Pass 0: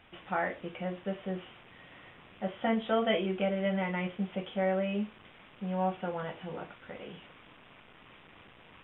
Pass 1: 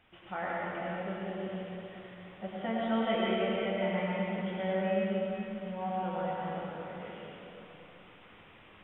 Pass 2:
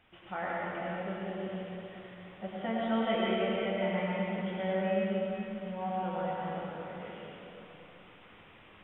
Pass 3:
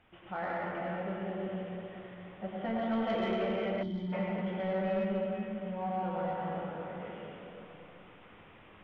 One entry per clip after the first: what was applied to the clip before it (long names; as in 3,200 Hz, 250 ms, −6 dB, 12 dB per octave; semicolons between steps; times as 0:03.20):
dense smooth reverb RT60 3.3 s, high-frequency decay 0.75×, pre-delay 80 ms, DRR −5 dB; level −6.5 dB
no processing that can be heard
soft clipping −27 dBFS, distortion −15 dB; gain on a spectral selection 0:03.83–0:04.13, 400–3,000 Hz −18 dB; high-shelf EQ 3,300 Hz −10.5 dB; level +1.5 dB